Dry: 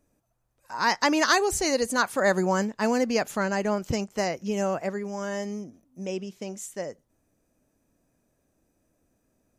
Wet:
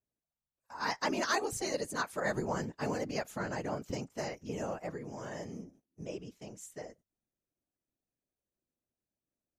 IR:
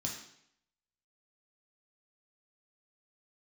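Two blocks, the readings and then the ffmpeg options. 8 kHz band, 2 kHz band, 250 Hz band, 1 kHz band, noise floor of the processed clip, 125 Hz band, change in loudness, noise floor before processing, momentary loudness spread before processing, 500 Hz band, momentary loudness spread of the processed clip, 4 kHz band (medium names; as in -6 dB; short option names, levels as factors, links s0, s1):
-10.5 dB, -10.5 dB, -11.5 dB, -10.0 dB, under -85 dBFS, -6.5 dB, -10.5 dB, -73 dBFS, 15 LU, -10.5 dB, 16 LU, -10.5 dB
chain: -af "afftfilt=real='hypot(re,im)*cos(2*PI*random(0))':imag='hypot(re,im)*sin(2*PI*random(1))':win_size=512:overlap=0.75,agate=range=0.224:threshold=0.00158:ratio=16:detection=peak,volume=0.596"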